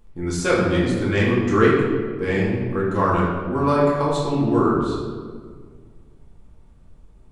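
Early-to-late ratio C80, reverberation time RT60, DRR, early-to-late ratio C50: 3.0 dB, 1.8 s, -6.0 dB, 0.5 dB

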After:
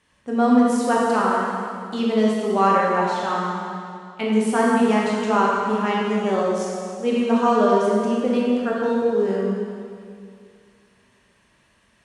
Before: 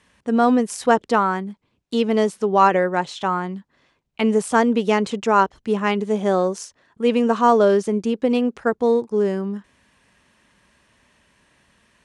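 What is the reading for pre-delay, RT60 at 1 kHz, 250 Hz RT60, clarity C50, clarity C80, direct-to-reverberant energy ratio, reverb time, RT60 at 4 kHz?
8 ms, 2.3 s, 2.3 s, -1.5 dB, 0.0 dB, -4.5 dB, 2.3 s, 2.1 s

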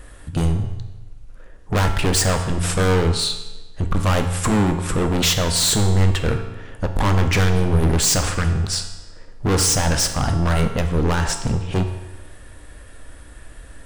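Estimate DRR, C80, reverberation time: 5.5 dB, 10.0 dB, 1.1 s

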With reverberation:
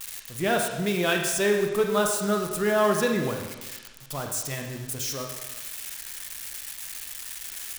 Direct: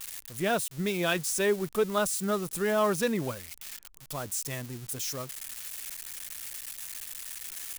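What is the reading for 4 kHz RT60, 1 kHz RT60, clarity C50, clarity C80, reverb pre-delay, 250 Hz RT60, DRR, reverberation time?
1.2 s, 1.2 s, 4.5 dB, 6.0 dB, 27 ms, 1.2 s, 2.5 dB, 1.2 s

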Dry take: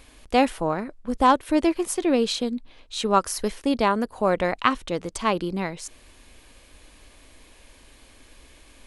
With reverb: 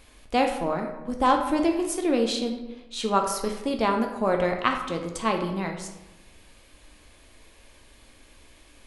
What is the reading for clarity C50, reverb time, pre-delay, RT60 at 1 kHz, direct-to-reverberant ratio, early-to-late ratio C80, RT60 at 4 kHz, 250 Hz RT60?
7.0 dB, 1.0 s, 8 ms, 1.0 s, 3.0 dB, 9.0 dB, 0.60 s, 1.1 s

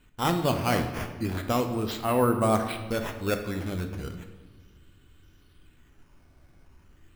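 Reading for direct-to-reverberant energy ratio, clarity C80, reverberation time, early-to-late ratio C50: 5.5 dB, 10.0 dB, 1.4 s, 8.0 dB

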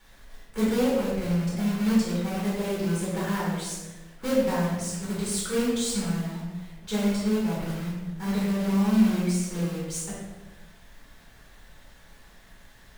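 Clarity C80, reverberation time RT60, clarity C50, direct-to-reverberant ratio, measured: 2.5 dB, 1.3 s, 0.0 dB, -8.0 dB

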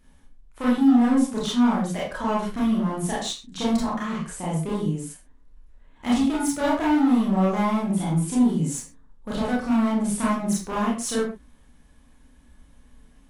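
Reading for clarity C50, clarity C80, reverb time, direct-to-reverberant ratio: 2.0 dB, 7.5 dB, not exponential, -7.0 dB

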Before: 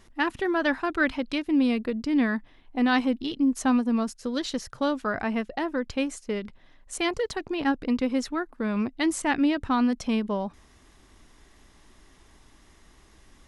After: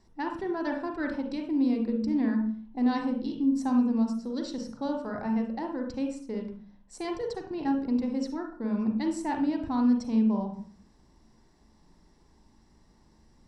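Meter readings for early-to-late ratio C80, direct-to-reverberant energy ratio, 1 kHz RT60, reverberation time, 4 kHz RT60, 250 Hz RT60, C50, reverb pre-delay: 10.0 dB, 2.0 dB, 0.45 s, 0.40 s, 0.40 s, 0.70 s, 5.0 dB, 39 ms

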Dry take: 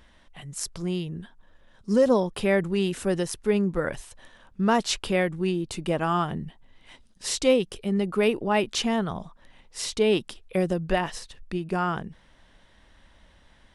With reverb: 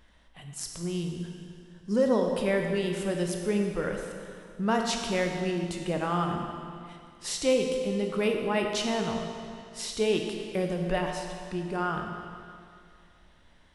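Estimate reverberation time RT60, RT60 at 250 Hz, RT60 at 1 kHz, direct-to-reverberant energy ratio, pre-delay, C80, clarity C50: 2.3 s, 2.3 s, 2.3 s, 2.5 dB, 17 ms, 4.5 dB, 3.5 dB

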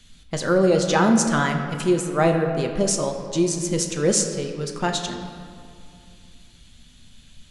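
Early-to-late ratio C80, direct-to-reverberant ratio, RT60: 7.0 dB, 3.5 dB, 2.4 s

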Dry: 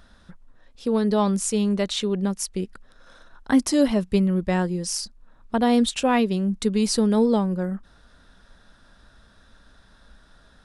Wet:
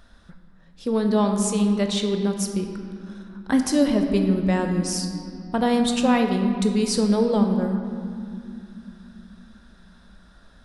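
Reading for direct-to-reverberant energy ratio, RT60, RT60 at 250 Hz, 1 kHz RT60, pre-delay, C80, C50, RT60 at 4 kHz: 4.5 dB, 2.7 s, 4.5 s, 2.3 s, 19 ms, 7.0 dB, 6.0 dB, 1.5 s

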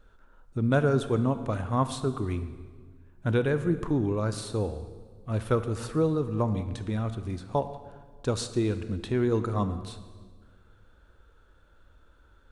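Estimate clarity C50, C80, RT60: 11.5 dB, 12.5 dB, 1.6 s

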